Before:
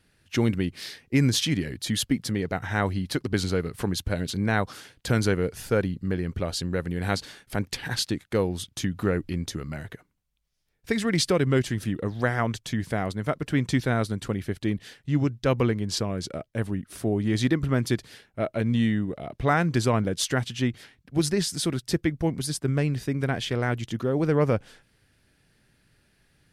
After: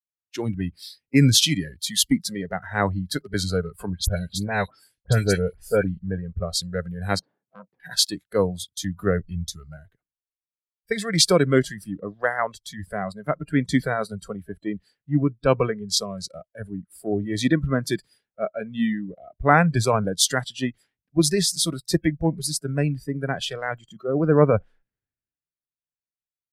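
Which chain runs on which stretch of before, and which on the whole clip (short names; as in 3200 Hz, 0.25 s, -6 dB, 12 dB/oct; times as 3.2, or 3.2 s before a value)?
3.9–5.99 dynamic EQ 1200 Hz, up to -6 dB, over -48 dBFS, Q 4.3 + dispersion highs, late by 76 ms, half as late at 2700 Hz
7.19–7.8 Chebyshev band-pass 160–810 Hz + core saturation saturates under 1400 Hz
whole clip: spectral noise reduction 19 dB; AGC gain up to 4.5 dB; three-band expander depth 70%; gain -1.5 dB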